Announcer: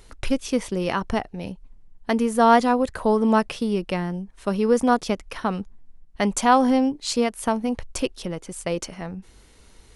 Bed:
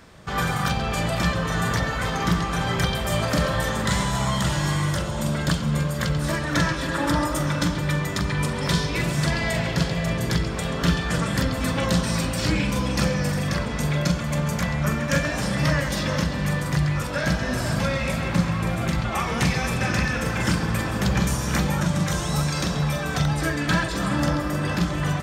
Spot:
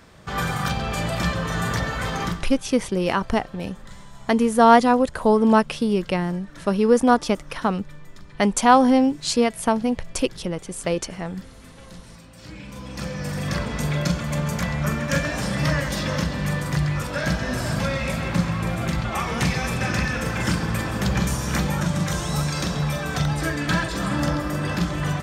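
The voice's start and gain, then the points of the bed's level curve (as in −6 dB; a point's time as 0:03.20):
2.20 s, +2.5 dB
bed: 0:02.24 −1 dB
0:02.54 −22 dB
0:12.24 −22 dB
0:13.53 −0.5 dB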